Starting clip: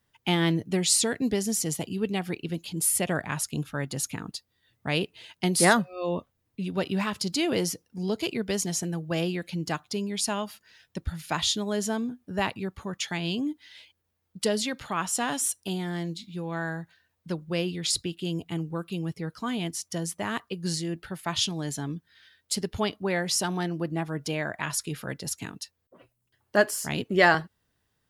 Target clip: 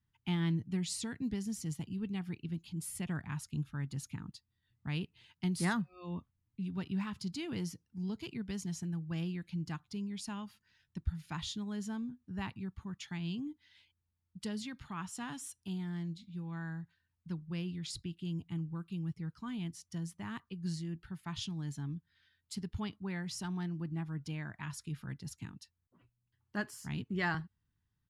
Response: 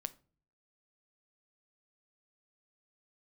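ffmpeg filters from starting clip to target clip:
-af "firequalizer=gain_entry='entry(120,0);entry(560,-24);entry(890,-11);entry(13000,-19)':delay=0.05:min_phase=1,volume=-2.5dB"

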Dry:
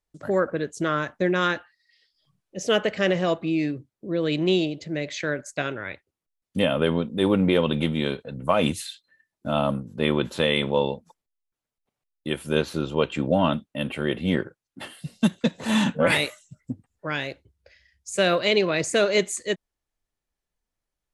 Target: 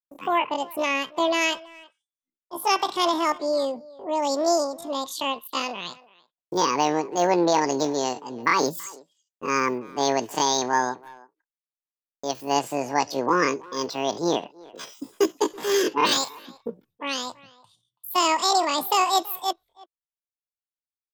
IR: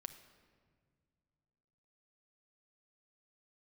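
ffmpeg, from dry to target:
-filter_complex "[0:a]agate=range=-33dB:threshold=-50dB:ratio=3:detection=peak,asetrate=80880,aresample=44100,atempo=0.545254,asplit=2[a][b];[b]adelay=330,highpass=300,lowpass=3.4k,asoftclip=type=hard:threshold=-16.5dB,volume=-21dB[c];[a][c]amix=inputs=2:normalize=0"

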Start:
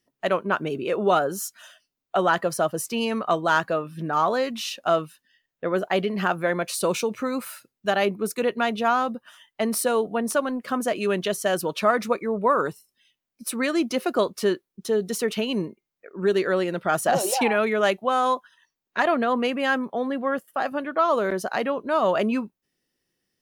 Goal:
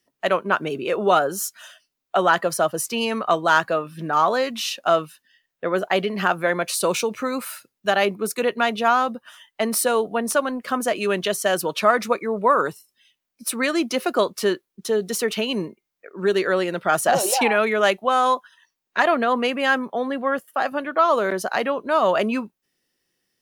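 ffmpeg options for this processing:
-filter_complex "[0:a]lowshelf=f=430:g=-6,acrossover=split=110|7000[a][b][c];[a]acrusher=bits=5:mode=log:mix=0:aa=0.000001[d];[d][b][c]amix=inputs=3:normalize=0,volume=4.5dB"

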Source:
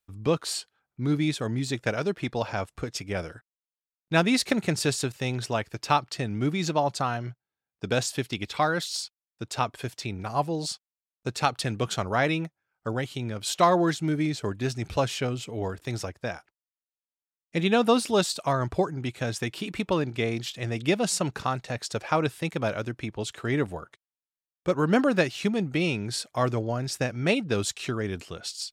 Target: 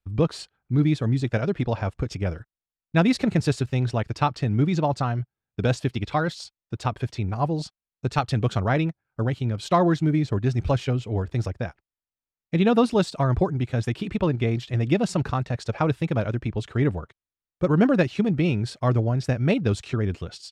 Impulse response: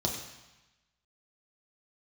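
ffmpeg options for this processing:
-af "atempo=1.4,aemphasis=mode=reproduction:type=bsi"

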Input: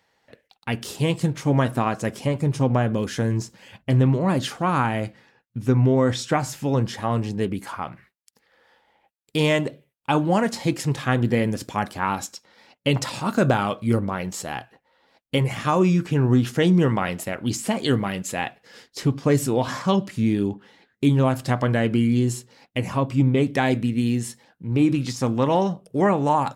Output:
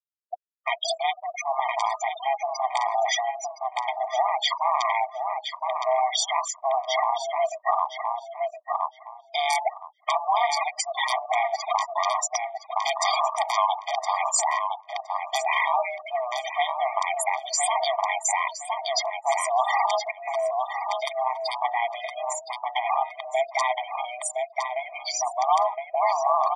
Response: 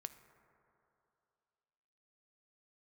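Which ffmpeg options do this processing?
-filter_complex "[0:a]aeval=exprs='(mod(2.82*val(0)+1,2)-1)/2.82':c=same,aeval=exprs='val(0)*sin(2*PI*250*n/s)':c=same,highpass=f=160:w=0.5412,highpass=f=160:w=1.3066,highshelf=f=11k:g=-6.5,bandreject=f=309.3:t=h:w=4,bandreject=f=618.6:t=h:w=4,bandreject=f=927.9:t=h:w=4,bandreject=f=1.2372k:t=h:w=4,bandreject=f=1.5465k:t=h:w=4,afftfilt=real='re*gte(hypot(re,im),0.0224)':imag='im*gte(hypot(re,im),0.0224)':win_size=1024:overlap=0.75,acompressor=threshold=-37dB:ratio=12,asplit=2[a][b];[b]adelay=1015,lowpass=f=3.6k:p=1,volume=-8.5dB,asplit=2[c][d];[d]adelay=1015,lowpass=f=3.6k:p=1,volume=0.19,asplit=2[e][f];[f]adelay=1015,lowpass=f=3.6k:p=1,volume=0.19[g];[c][e][g]amix=inputs=3:normalize=0[h];[a][h]amix=inputs=2:normalize=0,alimiter=level_in=34.5dB:limit=-1dB:release=50:level=0:latency=1,afftfilt=real='re*eq(mod(floor(b*sr/1024/620),2),1)':imag='im*eq(mod(floor(b*sr/1024/620),2),1)':win_size=1024:overlap=0.75,volume=-7.5dB"

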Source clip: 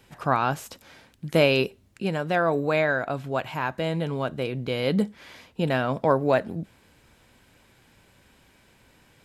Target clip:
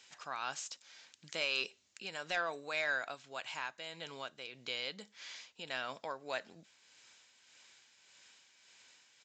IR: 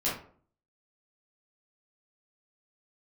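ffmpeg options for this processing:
-filter_complex "[0:a]aderivative,asplit=2[a][b];[b]acompressor=threshold=-54dB:ratio=6,volume=1dB[c];[a][c]amix=inputs=2:normalize=0,tremolo=f=1.7:d=0.47,asettb=1/sr,asplit=3[d][e][f];[d]atrim=end=1.414[g];[e]atrim=start=1.41:end=3.15,asetpts=PTS-STARTPTS,afade=t=in:d=0.004:c=qsin,afade=t=out:st=1.736:d=0.004:c=qsin,aeval=exprs='0.0708*(cos(1*acos(clip(val(0)/0.0708,-1,1)))-cos(1*PI/2))+0.00631*(cos(5*acos(clip(val(0)/0.0708,-1,1)))-cos(5*PI/2))':c=same[h];[f]atrim=start=3.146[i];[g][h]acrossfade=d=0.004:c1=hsin:c2=qsin[j];[j][i]acrossfade=d=0.004:c1=qsin:c2=hsin,aresample=16000,aresample=44100,volume=2dB"

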